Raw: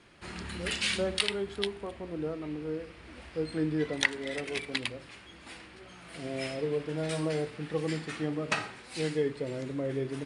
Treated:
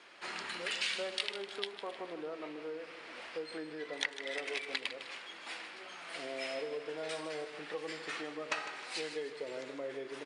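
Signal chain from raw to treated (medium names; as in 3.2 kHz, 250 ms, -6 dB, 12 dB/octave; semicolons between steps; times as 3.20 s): compression 4:1, threshold -37 dBFS, peak gain reduction 15.5 dB; band-pass 540–7200 Hz; feedback delay 154 ms, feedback 47%, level -11.5 dB; trim +4 dB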